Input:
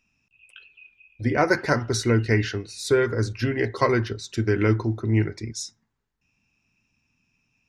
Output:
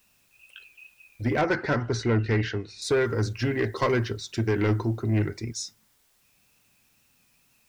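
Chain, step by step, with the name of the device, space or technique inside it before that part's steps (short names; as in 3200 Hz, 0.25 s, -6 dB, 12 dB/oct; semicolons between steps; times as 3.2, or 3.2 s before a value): compact cassette (soft clip -17 dBFS, distortion -13 dB; LPF 8900 Hz; wow and flutter; white noise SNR 38 dB); 1.41–2.82 Bessel low-pass 3500 Hz, order 2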